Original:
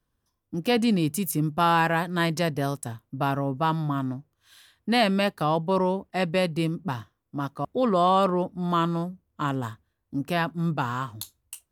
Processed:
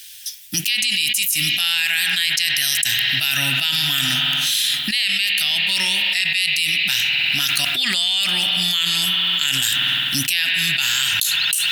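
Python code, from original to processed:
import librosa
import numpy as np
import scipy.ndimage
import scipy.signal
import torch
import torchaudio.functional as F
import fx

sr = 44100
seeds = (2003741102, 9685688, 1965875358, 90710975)

y = scipy.signal.sosfilt(scipy.signal.cheby2(4, 40, 1200.0, 'highpass', fs=sr, output='sos'), x)
y = fx.rev_spring(y, sr, rt60_s=3.0, pass_ms=(51,), chirp_ms=55, drr_db=11.0)
y = fx.env_flatten(y, sr, amount_pct=100)
y = F.gain(torch.from_numpy(y), 8.0).numpy()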